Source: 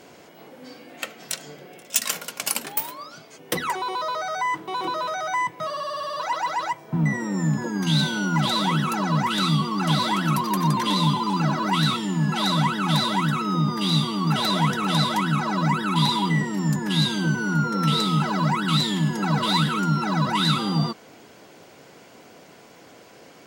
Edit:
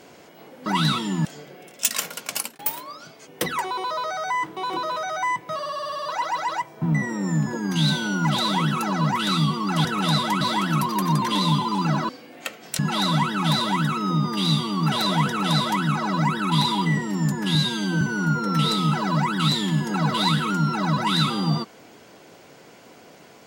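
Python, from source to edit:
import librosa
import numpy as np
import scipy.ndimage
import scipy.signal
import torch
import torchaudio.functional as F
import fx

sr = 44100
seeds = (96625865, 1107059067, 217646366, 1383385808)

y = fx.edit(x, sr, fx.swap(start_s=0.66, length_s=0.7, other_s=11.64, other_length_s=0.59),
    fx.fade_out_span(start_s=2.44, length_s=0.26),
    fx.duplicate(start_s=14.71, length_s=0.56, to_s=9.96),
    fx.stretch_span(start_s=16.99, length_s=0.31, factor=1.5), tone=tone)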